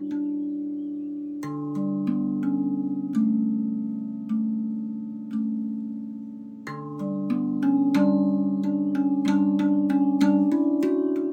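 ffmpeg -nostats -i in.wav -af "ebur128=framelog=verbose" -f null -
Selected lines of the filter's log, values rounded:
Integrated loudness:
  I:         -25.1 LUFS
  Threshold: -35.3 LUFS
Loudness range:
  LRA:         8.1 LU
  Threshold: -45.6 LUFS
  LRA low:   -30.3 LUFS
  LRA high:  -22.1 LUFS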